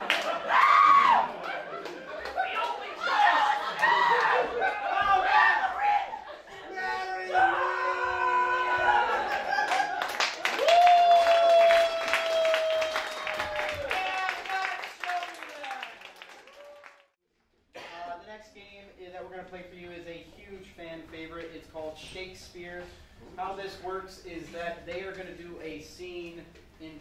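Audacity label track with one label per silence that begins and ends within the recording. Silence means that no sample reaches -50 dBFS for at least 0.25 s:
17.010000	17.750000	silence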